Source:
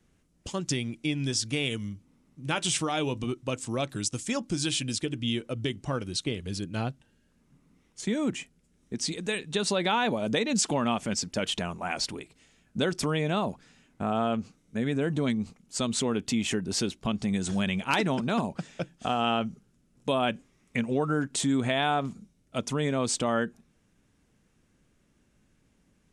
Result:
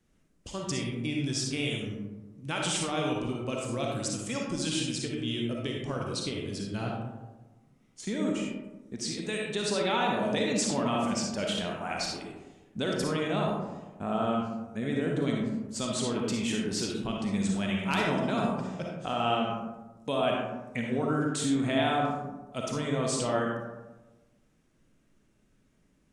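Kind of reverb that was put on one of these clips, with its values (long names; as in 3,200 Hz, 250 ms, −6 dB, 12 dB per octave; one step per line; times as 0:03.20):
comb and all-pass reverb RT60 1.2 s, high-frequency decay 0.35×, pre-delay 15 ms, DRR −1.5 dB
level −5 dB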